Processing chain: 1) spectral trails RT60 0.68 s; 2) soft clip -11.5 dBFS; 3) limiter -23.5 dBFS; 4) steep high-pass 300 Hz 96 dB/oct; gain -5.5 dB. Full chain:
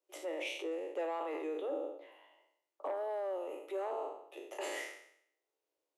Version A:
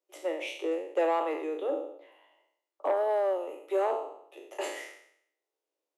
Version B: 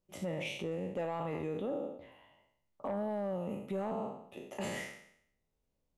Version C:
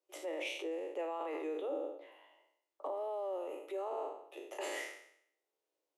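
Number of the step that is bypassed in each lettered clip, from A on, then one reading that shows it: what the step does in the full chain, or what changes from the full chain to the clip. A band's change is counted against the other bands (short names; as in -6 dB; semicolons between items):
3, mean gain reduction 4.0 dB; 4, 250 Hz band +7.5 dB; 2, distortion -18 dB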